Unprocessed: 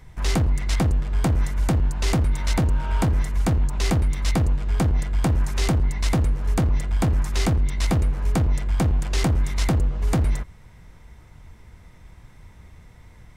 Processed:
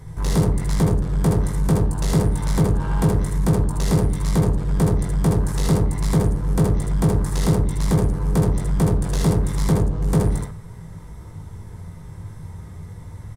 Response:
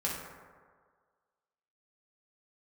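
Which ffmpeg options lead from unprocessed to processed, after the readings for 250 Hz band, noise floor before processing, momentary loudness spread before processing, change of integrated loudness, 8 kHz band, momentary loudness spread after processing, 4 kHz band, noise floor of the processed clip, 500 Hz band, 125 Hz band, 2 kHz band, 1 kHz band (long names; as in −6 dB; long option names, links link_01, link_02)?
+5.5 dB, −48 dBFS, 1 LU, +2.5 dB, +2.0 dB, 17 LU, −3.0 dB, −38 dBFS, +6.5 dB, +3.5 dB, −3.0 dB, +1.5 dB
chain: -filter_complex "[0:a]equalizer=frequency=100:width_type=o:width=0.47:gain=10,asoftclip=type=tanh:threshold=-23.5dB,equalizer=frequency=160:width_type=o:width=0.67:gain=9,equalizer=frequency=400:width_type=o:width=0.67:gain=7,equalizer=frequency=1000:width_type=o:width=0.67:gain=4,equalizer=frequency=2500:width_type=o:width=0.67:gain=-8,equalizer=frequency=10000:width_type=o:width=0.67:gain=8,aecho=1:1:19|68|78:0.562|0.398|0.668,asplit=2[link_01][link_02];[1:a]atrim=start_sample=2205,afade=type=out:start_time=0.14:duration=0.01,atrim=end_sample=6615[link_03];[link_02][link_03]afir=irnorm=-1:irlink=0,volume=-12.5dB[link_04];[link_01][link_04]amix=inputs=2:normalize=0"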